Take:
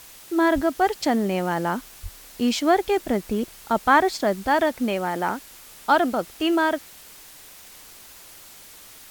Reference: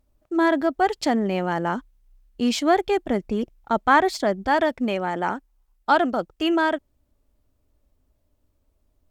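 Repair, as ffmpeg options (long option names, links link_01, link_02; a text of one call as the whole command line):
ffmpeg -i in.wav -filter_complex "[0:a]asplit=3[link_01][link_02][link_03];[link_01]afade=type=out:start_time=0.54:duration=0.02[link_04];[link_02]highpass=frequency=140:width=0.5412,highpass=frequency=140:width=1.3066,afade=type=in:start_time=0.54:duration=0.02,afade=type=out:start_time=0.66:duration=0.02[link_05];[link_03]afade=type=in:start_time=0.66:duration=0.02[link_06];[link_04][link_05][link_06]amix=inputs=3:normalize=0,asplit=3[link_07][link_08][link_09];[link_07]afade=type=out:start_time=2.02:duration=0.02[link_10];[link_08]highpass=frequency=140:width=0.5412,highpass=frequency=140:width=1.3066,afade=type=in:start_time=2.02:duration=0.02,afade=type=out:start_time=2.14:duration=0.02[link_11];[link_09]afade=type=in:start_time=2.14:duration=0.02[link_12];[link_10][link_11][link_12]amix=inputs=3:normalize=0,afwtdn=0.0056" out.wav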